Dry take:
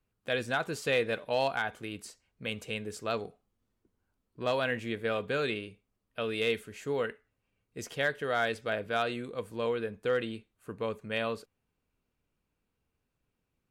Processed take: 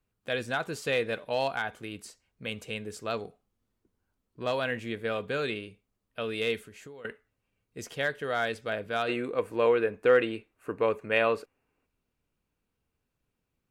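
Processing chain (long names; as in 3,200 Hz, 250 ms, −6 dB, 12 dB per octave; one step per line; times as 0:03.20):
0:06.62–0:07.05: downward compressor 6 to 1, threshold −46 dBFS, peak gain reduction 17.5 dB
0:09.09–0:11.86: gain on a spectral selection 250–2,900 Hz +8 dB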